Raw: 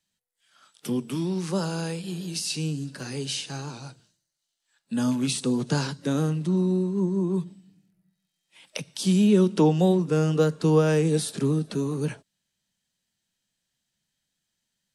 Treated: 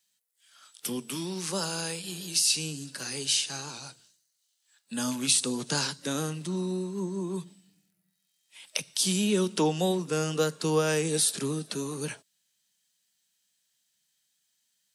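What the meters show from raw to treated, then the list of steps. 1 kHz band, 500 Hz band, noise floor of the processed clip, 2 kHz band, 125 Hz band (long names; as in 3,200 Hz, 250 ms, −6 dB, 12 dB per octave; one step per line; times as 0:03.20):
−2.0 dB, −5.0 dB, −76 dBFS, +1.5 dB, −9.5 dB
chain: spectral tilt +3 dB per octave
level −1.5 dB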